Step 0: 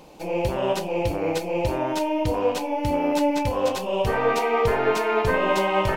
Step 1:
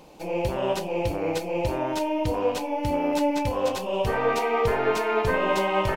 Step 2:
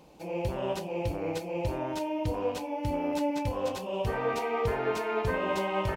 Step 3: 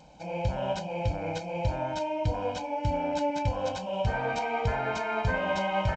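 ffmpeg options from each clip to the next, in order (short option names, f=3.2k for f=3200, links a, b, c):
-af "aecho=1:1:282:0.0631,volume=-2dB"
-af "highpass=44,lowshelf=f=200:g=6,volume=-7dB"
-af "aecho=1:1:1.3:0.78" -ar 16000 -c:a g722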